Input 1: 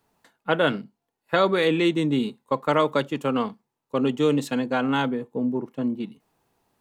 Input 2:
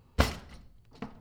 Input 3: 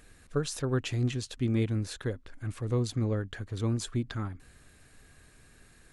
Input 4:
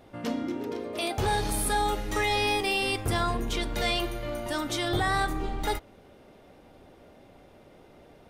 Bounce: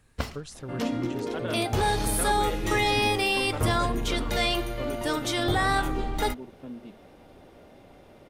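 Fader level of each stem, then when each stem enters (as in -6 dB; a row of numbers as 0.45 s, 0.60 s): -14.5 dB, -6.0 dB, -8.0 dB, +2.0 dB; 0.85 s, 0.00 s, 0.00 s, 0.55 s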